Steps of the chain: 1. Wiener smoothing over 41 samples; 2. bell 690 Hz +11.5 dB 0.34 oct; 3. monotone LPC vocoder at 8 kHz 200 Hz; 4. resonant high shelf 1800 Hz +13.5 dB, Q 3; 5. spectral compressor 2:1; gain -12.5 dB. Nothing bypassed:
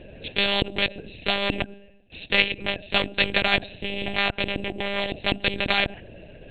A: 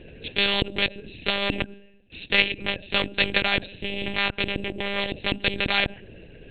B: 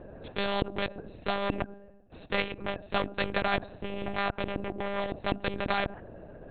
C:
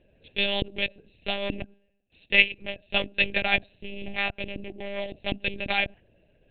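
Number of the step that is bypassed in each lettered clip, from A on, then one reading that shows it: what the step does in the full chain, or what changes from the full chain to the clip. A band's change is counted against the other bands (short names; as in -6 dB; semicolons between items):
2, 1 kHz band -2.0 dB; 4, 4 kHz band -10.0 dB; 5, 2 kHz band +3.5 dB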